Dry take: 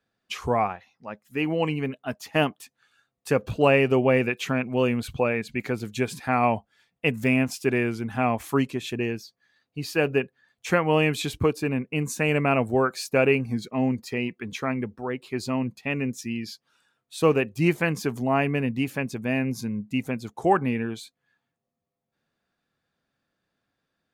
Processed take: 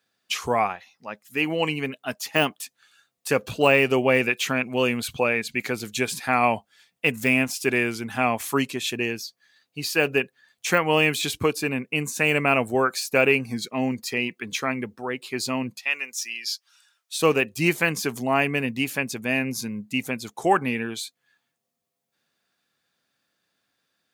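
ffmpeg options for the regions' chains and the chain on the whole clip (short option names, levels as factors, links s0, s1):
-filter_complex "[0:a]asettb=1/sr,asplit=3[s0][s1][s2];[s0]atrim=end=15.794[s3];[s1]atrim=start=15.79:end=17.17,asetpts=PTS-STARTPTS,afade=t=in:d=0.004:c=qsin,afade=t=out:st=1.376:d=0.004:c=qsin,highpass=970,equalizer=f=5600:w=3.2:g=5[s4];[s2]atrim=start=17.166[s5];[s3][s4]acrossfade=d=0.004:c1=hsin:c2=qsin[s6];[s6][s5]acrossfade=d=0.004:c1=qsin:c2=hsin,deesser=0.75,highpass=f=170:p=1,highshelf=f=2100:g=11.5"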